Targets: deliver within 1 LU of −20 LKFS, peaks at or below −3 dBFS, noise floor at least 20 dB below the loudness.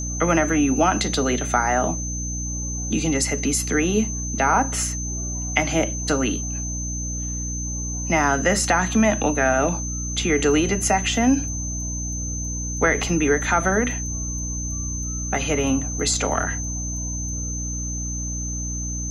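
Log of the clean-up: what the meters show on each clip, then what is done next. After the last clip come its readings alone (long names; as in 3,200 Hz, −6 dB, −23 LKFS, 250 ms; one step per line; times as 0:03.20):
mains hum 60 Hz; hum harmonics up to 300 Hz; level of the hum −27 dBFS; interfering tone 6,200 Hz; level of the tone −29 dBFS; integrated loudness −22.5 LKFS; sample peak −2.5 dBFS; target loudness −20.0 LKFS
→ hum removal 60 Hz, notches 5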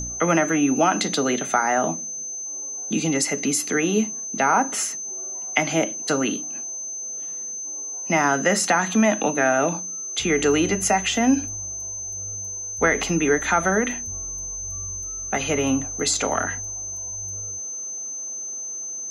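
mains hum none found; interfering tone 6,200 Hz; level of the tone −29 dBFS
→ notch filter 6,200 Hz, Q 30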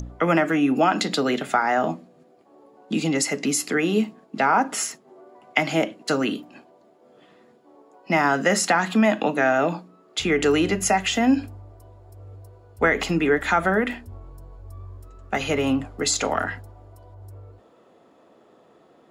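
interfering tone none found; integrated loudness −22.0 LKFS; sample peak −3.0 dBFS; target loudness −20.0 LKFS
→ level +2 dB
brickwall limiter −3 dBFS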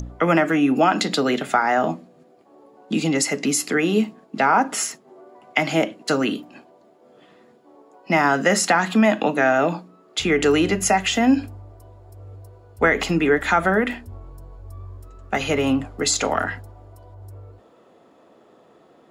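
integrated loudness −20.5 LKFS; sample peak −3.0 dBFS; background noise floor −54 dBFS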